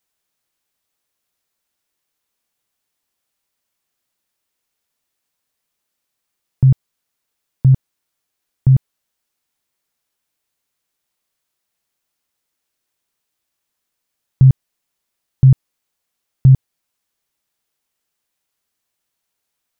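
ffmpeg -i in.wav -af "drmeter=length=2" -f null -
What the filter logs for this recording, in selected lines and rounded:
Channel 1: DR: 11.0
Overall DR: 11.0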